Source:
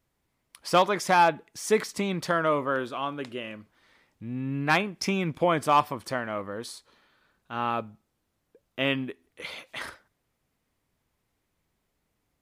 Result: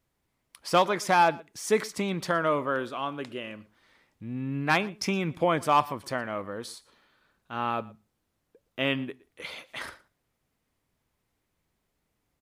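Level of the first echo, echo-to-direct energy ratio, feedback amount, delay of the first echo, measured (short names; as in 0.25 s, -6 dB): -22.5 dB, -22.5 dB, no steady repeat, 0.117 s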